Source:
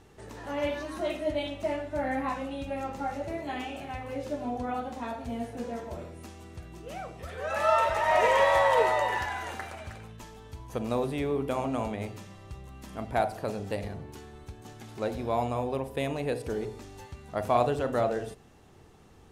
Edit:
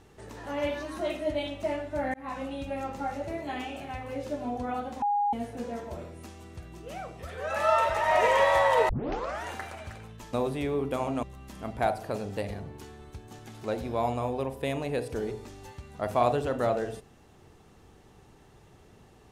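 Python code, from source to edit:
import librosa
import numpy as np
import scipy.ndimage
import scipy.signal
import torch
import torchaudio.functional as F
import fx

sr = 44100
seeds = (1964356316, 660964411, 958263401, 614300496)

y = fx.edit(x, sr, fx.fade_in_span(start_s=2.14, length_s=0.28),
    fx.bleep(start_s=5.02, length_s=0.31, hz=820.0, db=-23.0),
    fx.tape_start(start_s=8.89, length_s=0.57),
    fx.cut(start_s=10.33, length_s=0.57),
    fx.cut(start_s=11.8, length_s=0.77), tone=tone)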